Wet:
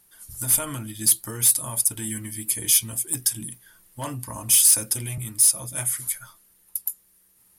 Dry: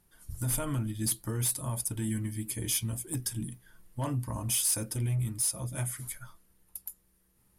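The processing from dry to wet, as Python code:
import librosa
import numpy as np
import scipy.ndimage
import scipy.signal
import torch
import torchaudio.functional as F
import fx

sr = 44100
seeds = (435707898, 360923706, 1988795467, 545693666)

y = fx.tilt_eq(x, sr, slope=2.5)
y = fx.band_squash(y, sr, depth_pct=40, at=(4.53, 5.18))
y = y * librosa.db_to_amplitude(4.5)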